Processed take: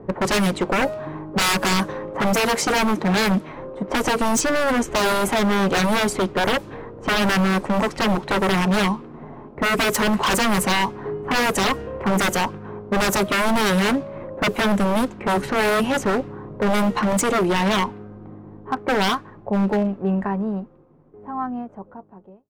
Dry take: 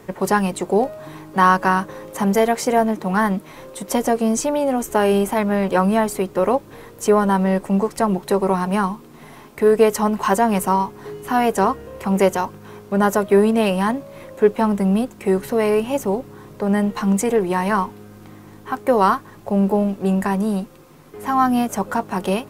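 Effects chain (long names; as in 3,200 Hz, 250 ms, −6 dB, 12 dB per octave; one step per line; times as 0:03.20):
fade-out on the ending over 5.74 s
low-pass that shuts in the quiet parts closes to 680 Hz, open at −14 dBFS
wave folding −19 dBFS
level +5 dB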